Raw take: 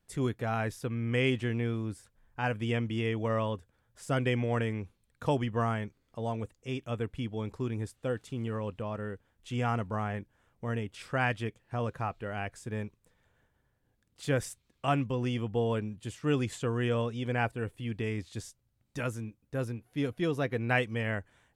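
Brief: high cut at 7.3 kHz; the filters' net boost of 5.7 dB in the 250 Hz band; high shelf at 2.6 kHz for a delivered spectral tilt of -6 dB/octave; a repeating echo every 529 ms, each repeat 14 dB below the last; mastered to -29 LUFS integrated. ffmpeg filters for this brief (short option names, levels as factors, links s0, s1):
-af "lowpass=7300,equalizer=f=250:t=o:g=6.5,highshelf=f=2600:g=4,aecho=1:1:529|1058:0.2|0.0399,volume=1.19"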